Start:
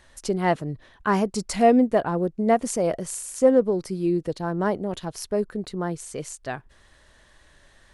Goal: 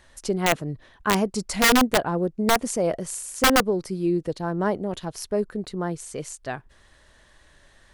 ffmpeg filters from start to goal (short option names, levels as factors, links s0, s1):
-af "aeval=exprs='(mod(3.76*val(0)+1,2)-1)/3.76':c=same"